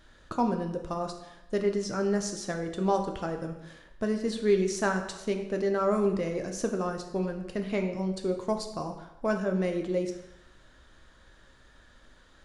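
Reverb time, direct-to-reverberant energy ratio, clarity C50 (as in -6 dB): 0.90 s, 4.0 dB, 7.5 dB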